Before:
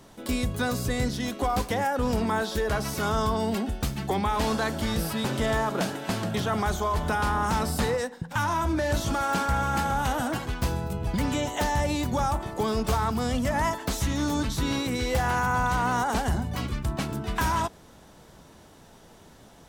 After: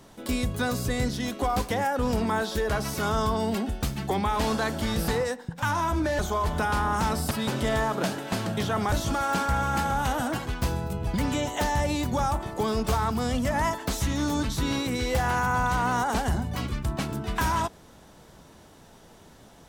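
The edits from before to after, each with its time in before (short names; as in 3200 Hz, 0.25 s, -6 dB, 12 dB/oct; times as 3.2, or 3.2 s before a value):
5.08–6.69 swap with 7.81–8.92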